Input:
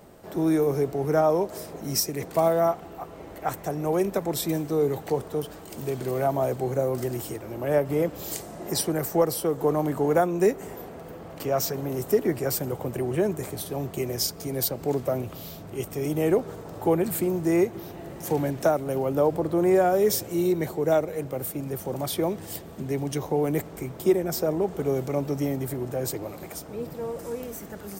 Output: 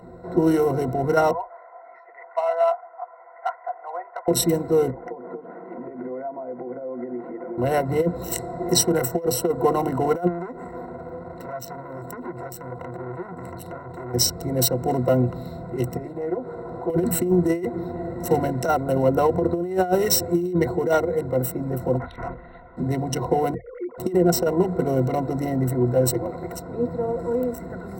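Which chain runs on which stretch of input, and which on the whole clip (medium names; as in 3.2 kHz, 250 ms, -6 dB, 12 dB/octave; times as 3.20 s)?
1.31–4.28 s: elliptic band-pass 680–2100 Hz, stop band 60 dB + flange 1.3 Hz, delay 1.6 ms, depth 5.3 ms, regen -86%
4.90–7.58 s: elliptic band-pass 210–2200 Hz + compression 10:1, threshold -37 dBFS
10.27–14.14 s: compression 16:1, threshold -31 dBFS + transformer saturation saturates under 2.2 kHz
15.97–16.90 s: tone controls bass -5 dB, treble -5 dB + compression 2.5:1, threshold -36 dBFS + loudspeaker Doppler distortion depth 0.22 ms
21.98–22.77 s: hard clipper -28 dBFS + band-pass filter 1.8 kHz, Q 0.86 + LPC vocoder at 8 kHz whisper
23.54–23.98 s: formants replaced by sine waves + FFT filter 450 Hz 0 dB, 660 Hz -9 dB, 1.1 kHz +2 dB + compression 12:1, threshold -37 dBFS
whole clip: local Wiener filter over 15 samples; rippled EQ curve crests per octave 2, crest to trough 17 dB; compressor with a negative ratio -20 dBFS, ratio -0.5; trim +3 dB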